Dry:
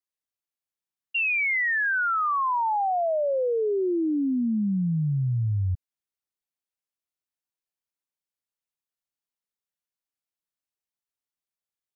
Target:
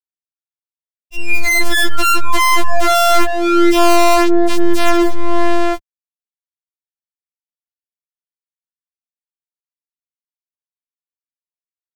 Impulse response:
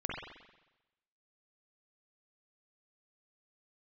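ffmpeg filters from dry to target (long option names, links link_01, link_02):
-filter_complex "[0:a]dynaudnorm=framelen=150:gausssize=17:maxgain=15dB,acrusher=bits=3:dc=4:mix=0:aa=0.000001,asplit=3[link_01][link_02][link_03];[link_01]afade=type=out:start_time=3.24:duration=0.02[link_04];[link_02]highpass=frequency=120:width=0.5412,highpass=frequency=120:width=1.3066,afade=type=in:start_time=3.24:duration=0.02,afade=type=out:start_time=4.47:duration=0.02[link_05];[link_03]afade=type=in:start_time=4.47:duration=0.02[link_06];[link_04][link_05][link_06]amix=inputs=3:normalize=0,asoftclip=type=hard:threshold=-18.5dB,highshelf=frequency=2300:gain=-5.5,afftfilt=real='hypot(re,im)*cos(PI*b)':imag='0':win_size=512:overlap=0.75,aemphasis=mode=reproduction:type=bsi,aeval=exprs='(mod(5.01*val(0)+1,2)-1)/5.01':channel_layout=same,acrossover=split=190|1100[link_07][link_08][link_09];[link_07]acompressor=threshold=-31dB:ratio=4[link_10];[link_08]acompressor=threshold=-37dB:ratio=4[link_11];[link_09]acompressor=threshold=-40dB:ratio=4[link_12];[link_10][link_11][link_12]amix=inputs=3:normalize=0,alimiter=level_in=21dB:limit=-1dB:release=50:level=0:latency=1,afftfilt=real='re*4*eq(mod(b,16),0)':imag='im*4*eq(mod(b,16),0)':win_size=2048:overlap=0.75,volume=-9.5dB"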